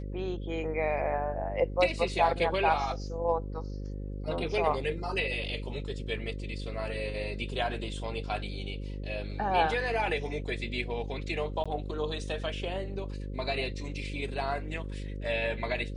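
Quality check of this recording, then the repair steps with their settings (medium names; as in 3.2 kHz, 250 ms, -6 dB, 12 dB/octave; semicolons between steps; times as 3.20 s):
buzz 50 Hz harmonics 11 -37 dBFS
11.64–11.66 s: dropout 16 ms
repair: de-hum 50 Hz, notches 11; interpolate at 11.64 s, 16 ms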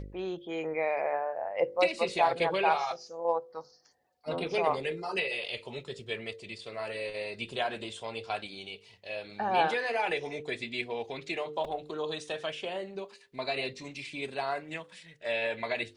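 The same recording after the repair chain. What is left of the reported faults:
nothing left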